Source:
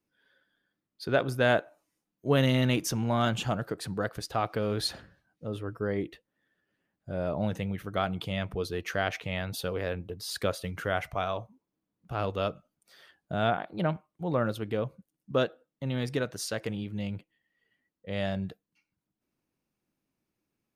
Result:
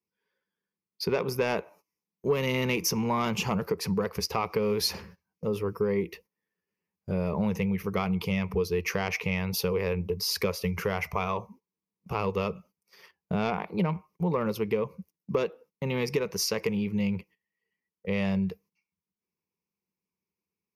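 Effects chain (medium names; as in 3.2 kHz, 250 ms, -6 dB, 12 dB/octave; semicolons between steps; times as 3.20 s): high-pass 65 Hz 12 dB/octave; saturation -16 dBFS, distortion -21 dB; rippled EQ curve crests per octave 0.82, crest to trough 13 dB; gate -55 dBFS, range -17 dB; compression 3:1, threshold -32 dBFS, peak gain reduction 11 dB; 4.66–7.31 s: treble shelf 6 kHz +5.5 dB; trim +6.5 dB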